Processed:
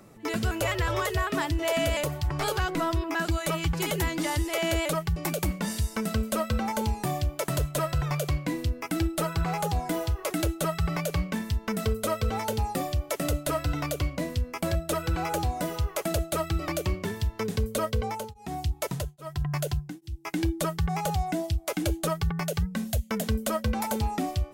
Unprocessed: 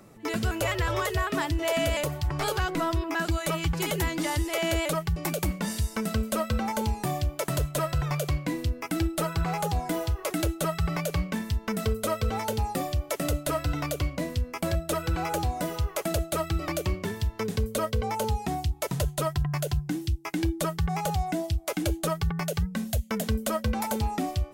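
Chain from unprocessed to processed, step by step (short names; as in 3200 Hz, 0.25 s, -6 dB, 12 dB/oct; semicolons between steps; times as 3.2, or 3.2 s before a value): 17.93–20.27 beating tremolo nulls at 1.2 Hz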